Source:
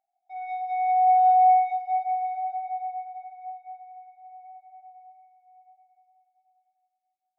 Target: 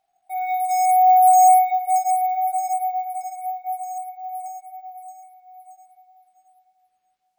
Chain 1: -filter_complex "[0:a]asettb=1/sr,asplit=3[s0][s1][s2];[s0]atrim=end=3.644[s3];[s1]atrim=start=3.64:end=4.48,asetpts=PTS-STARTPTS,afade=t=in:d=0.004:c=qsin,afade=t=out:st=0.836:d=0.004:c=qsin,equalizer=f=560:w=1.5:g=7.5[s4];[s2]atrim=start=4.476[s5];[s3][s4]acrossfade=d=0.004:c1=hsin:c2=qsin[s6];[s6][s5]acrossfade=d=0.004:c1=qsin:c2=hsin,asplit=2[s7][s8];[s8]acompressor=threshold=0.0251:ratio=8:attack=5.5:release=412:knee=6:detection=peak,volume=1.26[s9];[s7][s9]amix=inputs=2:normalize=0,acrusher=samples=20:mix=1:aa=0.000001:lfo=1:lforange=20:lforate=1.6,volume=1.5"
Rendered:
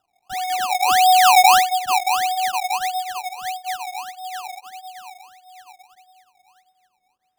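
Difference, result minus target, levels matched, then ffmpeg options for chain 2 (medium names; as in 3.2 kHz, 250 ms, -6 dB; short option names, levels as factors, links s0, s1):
decimation with a swept rate: distortion +20 dB
-filter_complex "[0:a]asettb=1/sr,asplit=3[s0][s1][s2];[s0]atrim=end=3.644[s3];[s1]atrim=start=3.64:end=4.48,asetpts=PTS-STARTPTS,afade=t=in:d=0.004:c=qsin,afade=t=out:st=0.836:d=0.004:c=qsin,equalizer=f=560:w=1.5:g=7.5[s4];[s2]atrim=start=4.476[s5];[s3][s4]acrossfade=d=0.004:c1=hsin:c2=qsin[s6];[s6][s5]acrossfade=d=0.004:c1=qsin:c2=hsin,asplit=2[s7][s8];[s8]acompressor=threshold=0.0251:ratio=8:attack=5.5:release=412:knee=6:detection=peak,volume=1.26[s9];[s7][s9]amix=inputs=2:normalize=0,acrusher=samples=4:mix=1:aa=0.000001:lfo=1:lforange=4:lforate=1.6,volume=1.5"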